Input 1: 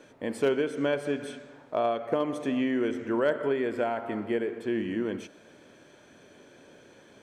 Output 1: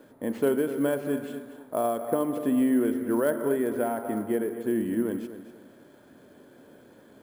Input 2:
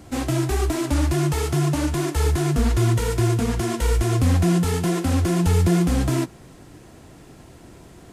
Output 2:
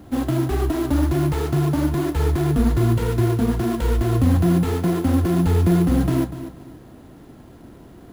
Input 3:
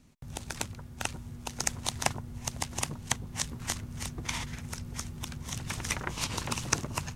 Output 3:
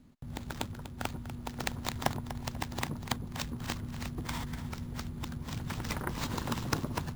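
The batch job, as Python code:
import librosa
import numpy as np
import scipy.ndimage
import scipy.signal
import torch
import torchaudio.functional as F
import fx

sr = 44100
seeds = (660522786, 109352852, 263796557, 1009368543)

y = fx.graphic_eq_15(x, sr, hz=(250, 2500, 6300), db=(5, -10, -10))
y = fx.echo_feedback(y, sr, ms=244, feedback_pct=28, wet_db=-12.5)
y = fx.sample_hold(y, sr, seeds[0], rate_hz=11000.0, jitter_pct=0)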